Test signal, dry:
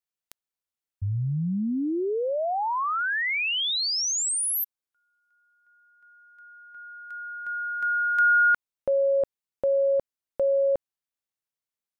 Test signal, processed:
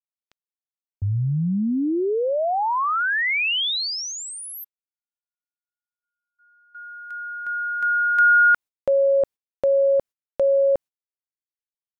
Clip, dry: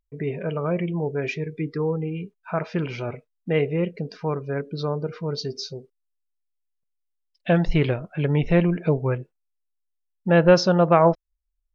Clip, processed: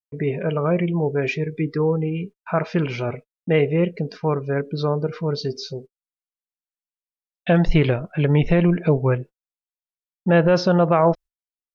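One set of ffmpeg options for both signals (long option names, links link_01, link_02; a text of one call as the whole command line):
ffmpeg -i in.wav -filter_complex "[0:a]acrossover=split=4200[link_01][link_02];[link_02]acompressor=threshold=-42dB:ratio=4:attack=1:release=60[link_03];[link_01][link_03]amix=inputs=2:normalize=0,agate=range=-44dB:threshold=-44dB:ratio=3:release=88:detection=rms,alimiter=level_in=11dB:limit=-1dB:release=50:level=0:latency=1,volume=-6.5dB" out.wav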